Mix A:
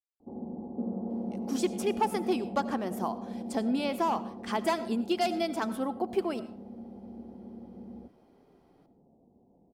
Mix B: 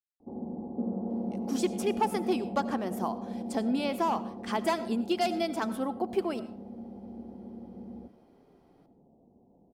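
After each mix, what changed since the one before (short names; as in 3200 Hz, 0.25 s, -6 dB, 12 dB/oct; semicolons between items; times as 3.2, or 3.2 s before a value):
background: send +9.0 dB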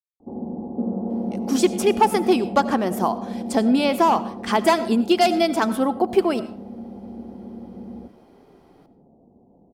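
speech +11.0 dB; background +7.0 dB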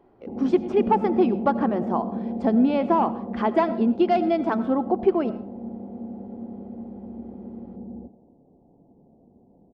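speech: entry -1.10 s; master: add tape spacing loss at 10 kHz 44 dB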